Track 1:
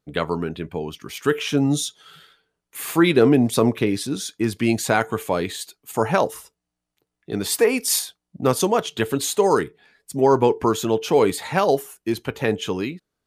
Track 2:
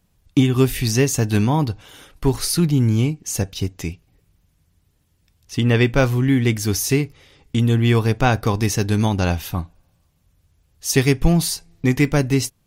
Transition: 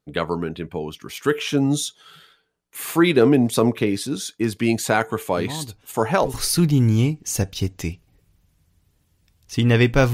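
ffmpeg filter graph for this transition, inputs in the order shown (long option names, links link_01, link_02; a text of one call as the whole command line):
ffmpeg -i cue0.wav -i cue1.wav -filter_complex "[1:a]asplit=2[link_01][link_02];[0:a]apad=whole_dur=10.13,atrim=end=10.13,atrim=end=6.342[link_03];[link_02]atrim=start=2.338:end=6.13[link_04];[link_01]atrim=start=1.37:end=2.34,asetpts=PTS-STARTPTS,volume=-13.5dB,afade=type=in:duration=0.004:curve=hsin,afade=type=out:start_time=0.966:duration=0.004:curve=hsin,adelay=236817S[link_05];[link_03][link_04]acrossfade=duration=0.004:curve1=hsin:curve2=hsin[link_06];[link_06][link_05]amix=inputs=2:normalize=0" out.wav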